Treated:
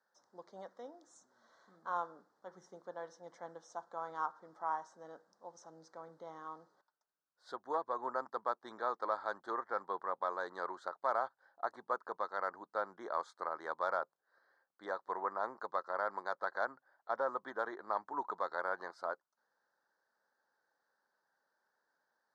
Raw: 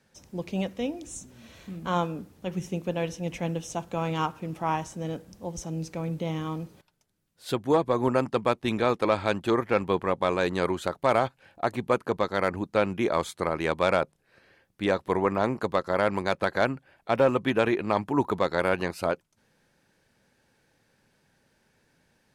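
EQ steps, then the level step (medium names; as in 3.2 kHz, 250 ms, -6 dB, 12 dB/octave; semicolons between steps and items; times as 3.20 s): high-pass 1.4 kHz 12 dB/octave; Butterworth band-stop 2.6 kHz, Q 0.79; tape spacing loss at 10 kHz 37 dB; +3.5 dB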